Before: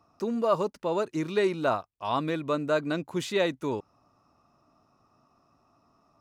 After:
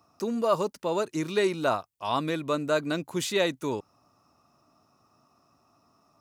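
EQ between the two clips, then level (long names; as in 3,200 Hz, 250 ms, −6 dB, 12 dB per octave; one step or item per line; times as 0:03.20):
high-pass filter 63 Hz
high-shelf EQ 4,900 Hz +10.5 dB
0.0 dB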